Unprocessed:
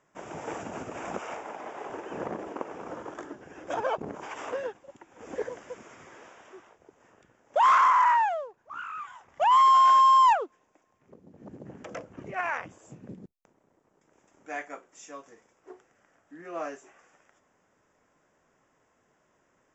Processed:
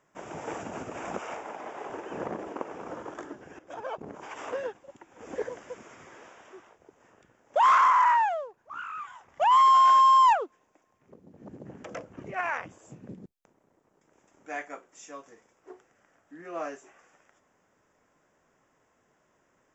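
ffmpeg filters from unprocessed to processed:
ffmpeg -i in.wav -filter_complex "[0:a]asplit=2[link_01][link_02];[link_01]atrim=end=3.59,asetpts=PTS-STARTPTS,afade=type=out:start_time=3.586:duration=0.004:curve=hsin:silence=0.199526[link_03];[link_02]atrim=start=3.59,asetpts=PTS-STARTPTS,afade=type=in:duration=1:silence=0.199526[link_04];[link_03][link_04]concat=n=2:v=0:a=1" out.wav

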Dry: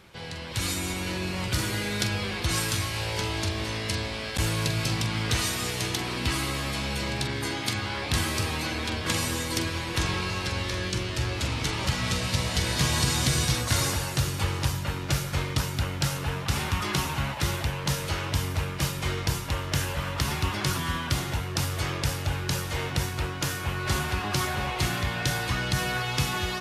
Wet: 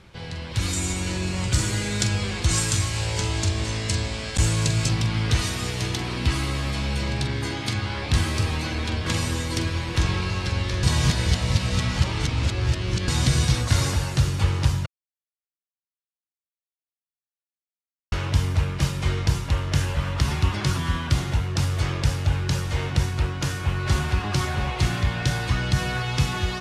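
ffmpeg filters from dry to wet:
ffmpeg -i in.wav -filter_complex "[0:a]asettb=1/sr,asplit=3[link_01][link_02][link_03];[link_01]atrim=end=0.734[link_04];[link_02]atrim=start=0.73:end=4.89,asetpts=PTS-STARTPTS,afade=type=in:duration=0.004:curve=qsin,afade=type=out:start_time=4.156:duration=0.004:curve=qsin,equalizer=frequency=7500:width=1.8:gain=11.5[link_05];[link_03]atrim=start=4.886[link_06];[link_04][link_05]acrossfade=duration=0.004:curve1=hsin:curve2=qsin[link_07];[link_07][link_06]acrossfade=duration=0.004:curve1=qsin:curve2=hsin,asplit=5[link_08][link_09][link_10][link_11][link_12];[link_08]atrim=end=10.832[link_13];[link_09]atrim=start=10.828:end=13.082,asetpts=PTS-STARTPTS,areverse[link_14];[link_10]atrim=start=13.078:end=14.86,asetpts=PTS-STARTPTS,afade=type=out:start_time=1.778:duration=0.004:curve=hsin[link_15];[link_11]atrim=start=14.86:end=18.12,asetpts=PTS-STARTPTS,volume=0[link_16];[link_12]atrim=start=18.12,asetpts=PTS-STARTPTS,afade=type=in:duration=0.004:curve=hsin[link_17];[link_13][link_14]acrossfade=duration=0.004:curve1=hsin:curve2=hsin[link_18];[link_15][link_16][link_17]concat=n=3:v=0:a=1[link_19];[link_18][link_19]acrossfade=duration=0.004:curve1=hsin:curve2=hsin,lowpass=8900,lowshelf=frequency=150:gain=10" out.wav

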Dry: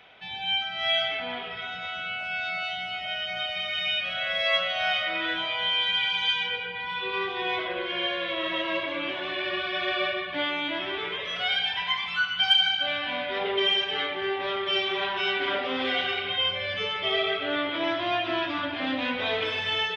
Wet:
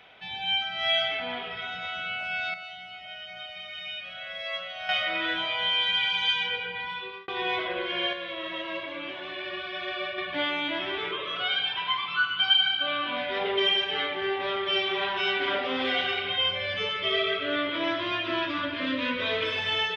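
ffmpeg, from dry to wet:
ffmpeg -i in.wav -filter_complex "[0:a]asettb=1/sr,asplit=3[link_01][link_02][link_03];[link_01]atrim=end=11.114[link_04];[link_02]atrim=start=11.11:end=13.17,asetpts=PTS-STARTPTS,afade=type=in:duration=0.004:curve=qsin,afade=type=out:start_time=2.056:duration=0.004:curve=qsin,highpass=frequency=120:width=0.5412,highpass=frequency=120:width=1.3066,equalizer=frequency=130:width_type=q:width=4:gain=5,equalizer=frequency=190:width_type=q:width=4:gain=-5,equalizer=frequency=340:width_type=q:width=4:gain=9,equalizer=frequency=790:width_type=q:width=4:gain=-6,equalizer=frequency=1200:width_type=q:width=4:gain=10,equalizer=frequency=1900:width_type=q:width=4:gain=-9,lowpass=frequency=4200:width=0.5412,lowpass=frequency=4200:width=1.3066[link_05];[link_03]atrim=start=13.166[link_06];[link_04][link_05]acrossfade=duration=0.004:curve1=hsin:curve2=qsin[link_07];[link_07][link_06]acrossfade=duration=0.004:curve1=qsin:curve2=hsin,asettb=1/sr,asplit=3[link_08][link_09][link_10];[link_08]atrim=end=13.694[link_11];[link_09]atrim=start=13.69:end=15.08,asetpts=PTS-STARTPTS,afade=type=in:duration=0.004:curve=qsin,afade=type=out:start_time=1.386:duration=0.004:curve=qsin,acrossover=split=5900[link_12][link_13];[link_13]acompressor=threshold=-60dB:ratio=4:attack=1:release=60[link_14];[link_12][link_14]amix=inputs=2:normalize=0[link_15];[link_10]atrim=start=15.076[link_16];[link_11][link_15]acrossfade=duration=0.004:curve1=hsin:curve2=qsin[link_17];[link_17][link_16]acrossfade=duration=0.004:curve1=qsin:curve2=hsin,asettb=1/sr,asplit=3[link_18][link_19][link_20];[link_18]atrim=end=16.894[link_21];[link_19]atrim=start=16.89:end=19.56,asetpts=PTS-STARTPTS,afade=type=in:duration=0.004:curve=qsin,afade=type=out:start_time=2.666:duration=0.004:curve=qsin,asuperstop=centerf=780:order=8:qfactor=3.2[link_22];[link_20]atrim=start=19.556[link_23];[link_21][link_22]acrossfade=duration=0.004:curve1=hsin:curve2=qsin[link_24];[link_24][link_23]acrossfade=duration=0.004:curve1=qsin:curve2=hsin,asplit=6[link_25][link_26][link_27][link_28][link_29][link_30];[link_25]atrim=end=2.542[link_31];[link_26]atrim=start=2.538:end=4.892,asetpts=PTS-STARTPTS,volume=-9.5dB[link_32];[link_27]atrim=start=4.888:end=7.28,asetpts=PTS-STARTPTS,afade=type=out:start_time=1.912:duration=0.48[link_33];[link_28]atrim=start=7.28:end=8.132,asetpts=PTS-STARTPTS,afade=type=in:duration=0.004:curve=hsin[link_34];[link_29]atrim=start=8.128:end=10.182,asetpts=PTS-STARTPTS,volume=-5.5dB[link_35];[link_30]atrim=start=10.178[link_36];[link_31][link_32]acrossfade=duration=0.004:curve1=hsin:curve2=hsin[link_37];[link_33][link_34]concat=n=2:v=0:a=1[link_38];[link_37][link_38]acrossfade=duration=0.004:curve1=hsin:curve2=hsin[link_39];[link_39][link_35]acrossfade=duration=0.004:curve1=hsin:curve2=hsin[link_40];[link_40][link_36]acrossfade=duration=0.004:curve1=hsin:curve2=hsin" out.wav

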